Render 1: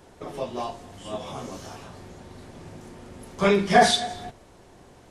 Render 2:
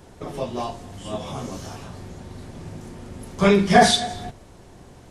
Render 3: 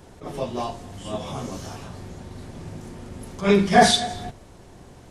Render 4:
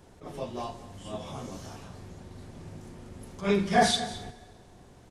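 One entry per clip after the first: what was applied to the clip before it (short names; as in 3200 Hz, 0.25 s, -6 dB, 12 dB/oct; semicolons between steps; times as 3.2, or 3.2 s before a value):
tone controls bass +6 dB, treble +2 dB; gain +2 dB
attack slew limiter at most 190 dB/s
echo 0.215 s -17.5 dB; plate-style reverb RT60 2.2 s, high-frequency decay 0.8×, DRR 19.5 dB; gain -7.5 dB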